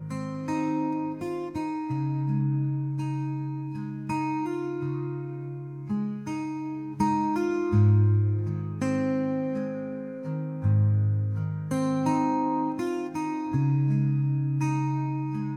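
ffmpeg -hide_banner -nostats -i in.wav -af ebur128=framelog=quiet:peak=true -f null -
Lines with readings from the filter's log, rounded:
Integrated loudness:
  I:         -27.8 LUFS
  Threshold: -37.8 LUFS
Loudness range:
  LRA:         5.9 LU
  Threshold: -47.7 LUFS
  LRA low:   -31.6 LUFS
  LRA high:  -25.6 LUFS
True peak:
  Peak:      -12.0 dBFS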